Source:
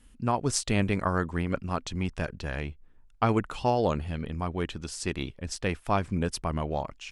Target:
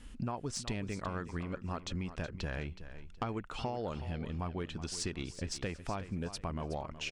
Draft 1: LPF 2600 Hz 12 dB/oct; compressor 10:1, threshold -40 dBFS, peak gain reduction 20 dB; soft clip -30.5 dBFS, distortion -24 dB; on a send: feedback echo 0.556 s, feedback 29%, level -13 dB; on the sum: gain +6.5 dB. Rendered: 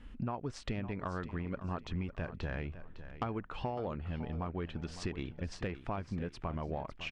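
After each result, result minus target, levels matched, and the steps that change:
8000 Hz band -12.5 dB; echo 0.185 s late
change: LPF 7500 Hz 12 dB/oct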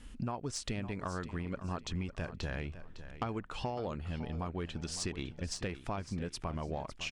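echo 0.185 s late
change: feedback echo 0.371 s, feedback 29%, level -13 dB

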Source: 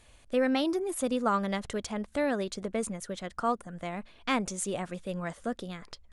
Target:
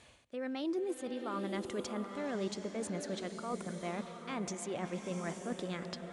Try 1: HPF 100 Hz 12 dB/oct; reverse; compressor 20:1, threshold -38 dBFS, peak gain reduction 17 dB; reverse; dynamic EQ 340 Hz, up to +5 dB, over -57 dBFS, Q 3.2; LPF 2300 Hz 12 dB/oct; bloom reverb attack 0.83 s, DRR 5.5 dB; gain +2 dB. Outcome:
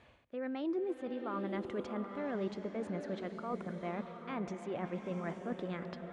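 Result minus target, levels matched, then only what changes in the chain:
8000 Hz band -18.0 dB
change: LPF 7800 Hz 12 dB/oct

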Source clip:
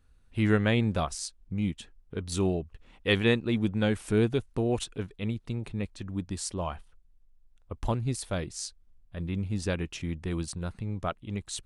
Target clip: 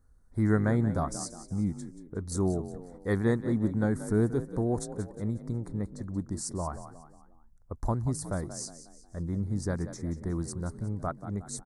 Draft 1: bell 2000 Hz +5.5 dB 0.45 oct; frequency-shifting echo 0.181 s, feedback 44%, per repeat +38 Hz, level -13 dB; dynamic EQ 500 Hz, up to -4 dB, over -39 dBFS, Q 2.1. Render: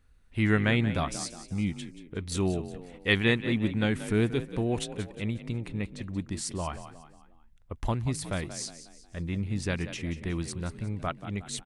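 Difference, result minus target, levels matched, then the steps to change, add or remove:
2000 Hz band +9.5 dB
add after dynamic EQ: Butterworth band-stop 2800 Hz, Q 0.65

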